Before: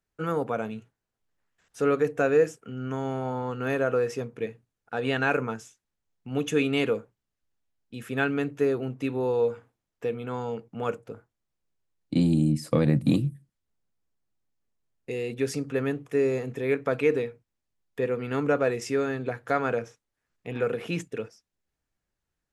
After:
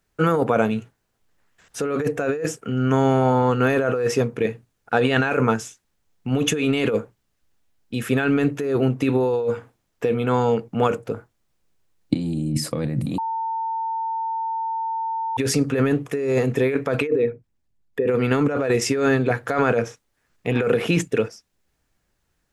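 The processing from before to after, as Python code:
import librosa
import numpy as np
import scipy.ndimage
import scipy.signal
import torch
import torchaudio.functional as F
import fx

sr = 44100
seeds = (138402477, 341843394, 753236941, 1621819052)

y = fx.envelope_sharpen(x, sr, power=1.5, at=(17.06, 18.07), fade=0.02)
y = fx.edit(y, sr, fx.bleep(start_s=13.18, length_s=2.19, hz=900.0, db=-16.5), tone=tone)
y = fx.over_compress(y, sr, threshold_db=-29.0, ratio=-1.0)
y = y * 10.0 ** (8.0 / 20.0)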